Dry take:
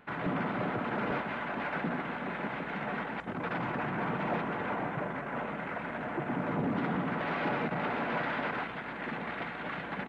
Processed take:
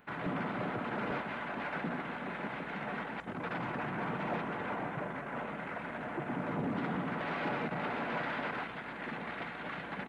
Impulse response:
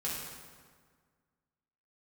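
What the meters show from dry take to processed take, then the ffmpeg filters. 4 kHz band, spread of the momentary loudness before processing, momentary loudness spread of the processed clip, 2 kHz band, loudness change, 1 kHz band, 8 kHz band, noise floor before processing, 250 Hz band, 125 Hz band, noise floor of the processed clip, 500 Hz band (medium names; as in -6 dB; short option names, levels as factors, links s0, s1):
-2.0 dB, 5 LU, 5 LU, -3.0 dB, -3.5 dB, -3.5 dB, no reading, -40 dBFS, -3.5 dB, -3.5 dB, -43 dBFS, -3.5 dB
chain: -af "crystalizer=i=1:c=0,volume=0.668"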